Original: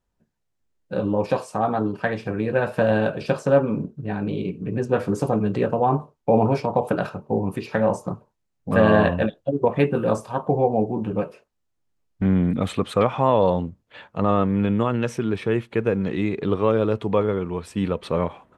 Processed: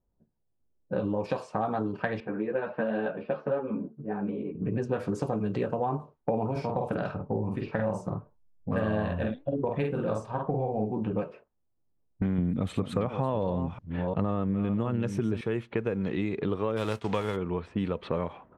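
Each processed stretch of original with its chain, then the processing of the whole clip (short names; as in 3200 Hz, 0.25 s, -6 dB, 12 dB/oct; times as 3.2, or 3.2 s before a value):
2.2–4.55 BPF 210–6700 Hz + air absorption 260 m + ensemble effect
6.51–10.92 low shelf 86 Hz +12 dB + flange 1.7 Hz, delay 2.7 ms, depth 2.9 ms, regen +89% + doubler 47 ms -3 dB
12.38–15.41 reverse delay 0.352 s, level -12 dB + low shelf 370 Hz +9 dB
16.76–17.35 spectral whitening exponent 0.6 + gate -35 dBFS, range -7 dB
whole clip: low-pass opened by the level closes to 700 Hz, open at -17 dBFS; compressor 5:1, threshold -26 dBFS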